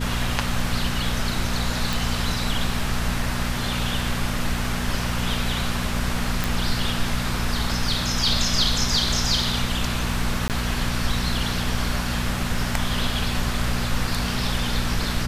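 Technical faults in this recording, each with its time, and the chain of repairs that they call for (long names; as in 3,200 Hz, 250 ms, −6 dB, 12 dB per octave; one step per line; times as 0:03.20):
mains hum 60 Hz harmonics 4 −28 dBFS
0:01.93: click
0:06.44: click
0:10.48–0:10.50: drop-out 18 ms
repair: click removal
hum removal 60 Hz, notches 4
repair the gap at 0:10.48, 18 ms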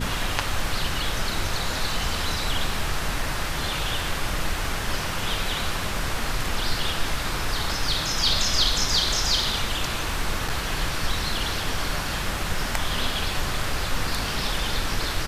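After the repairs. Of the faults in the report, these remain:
none of them is left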